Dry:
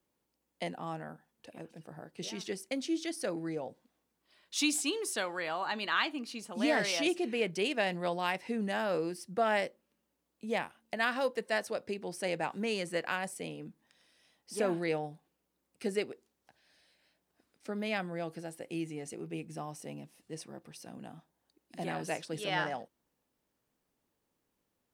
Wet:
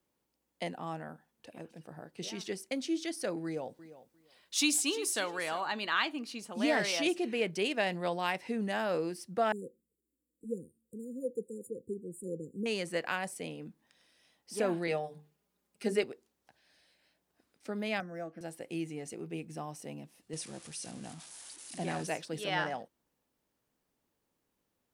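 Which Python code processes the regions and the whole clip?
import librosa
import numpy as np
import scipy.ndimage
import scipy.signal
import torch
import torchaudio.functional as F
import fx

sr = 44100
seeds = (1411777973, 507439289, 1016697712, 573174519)

y = fx.chain(x, sr, fx.high_shelf(hz=4700.0, db=5.0),
    fx.echo_feedback(ms=349, feedback_pct=16, wet_db=-15.5), at=(3.44, 5.61))
y = fx.chain(y, sr, fx.env_flanger(rest_ms=4.0, full_db=-32.0),
    fx.brickwall_bandstop(low_hz=530.0, high_hz=6900.0), at=(9.52, 12.66))
y = fx.chain(y, sr, fx.hum_notches(base_hz=50, count=9),
    fx.comb(ms=4.9, depth=0.58), at=(14.87, 16.04))
y = fx.chain(y, sr, fx.air_absorb(metres=83.0),
    fx.fixed_phaser(hz=620.0, stages=8),
    fx.resample_linear(factor=6), at=(18.0, 18.41))
y = fx.chain(y, sr, fx.crossing_spikes(level_db=-35.5),
    fx.brickwall_lowpass(high_hz=11000.0),
    fx.low_shelf(hz=100.0, db=10.5), at=(20.33, 22.07))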